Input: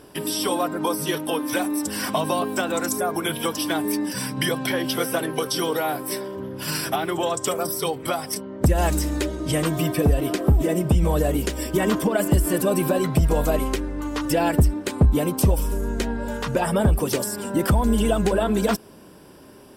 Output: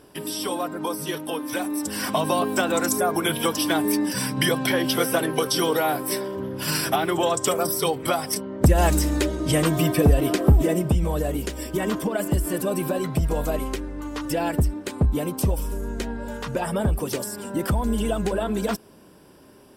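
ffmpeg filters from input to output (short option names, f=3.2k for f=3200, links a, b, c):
-af "volume=2dB,afade=t=in:st=1.51:d=1.07:silence=0.501187,afade=t=out:st=10.51:d=0.55:silence=0.501187"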